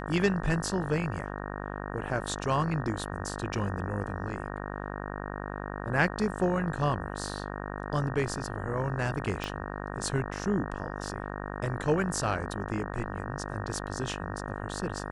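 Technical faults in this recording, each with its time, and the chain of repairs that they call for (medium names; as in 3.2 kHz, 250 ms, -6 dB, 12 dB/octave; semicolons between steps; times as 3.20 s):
buzz 50 Hz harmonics 37 -37 dBFS
9.44 s: pop -18 dBFS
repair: de-click; de-hum 50 Hz, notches 37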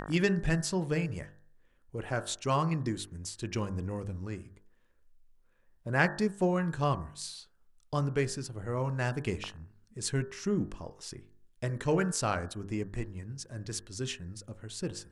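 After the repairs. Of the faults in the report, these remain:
9.44 s: pop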